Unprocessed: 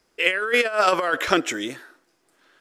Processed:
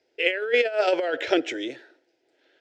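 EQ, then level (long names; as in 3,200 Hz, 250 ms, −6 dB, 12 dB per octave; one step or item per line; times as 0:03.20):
high-pass filter 170 Hz 12 dB per octave
high-frequency loss of the air 190 metres
phaser with its sweep stopped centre 470 Hz, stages 4
+2.0 dB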